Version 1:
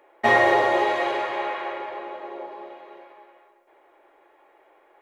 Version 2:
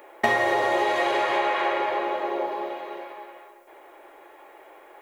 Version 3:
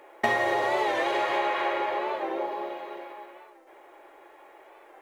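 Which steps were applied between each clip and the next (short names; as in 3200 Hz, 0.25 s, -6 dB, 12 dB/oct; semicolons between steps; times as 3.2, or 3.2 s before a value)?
high shelf 7000 Hz +11 dB; compressor 8:1, threshold -28 dBFS, peak gain reduction 15 dB; gain +8.5 dB
median filter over 3 samples; reverb RT60 3.7 s, pre-delay 4 ms, DRR 18.5 dB; record warp 45 rpm, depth 100 cents; gain -3 dB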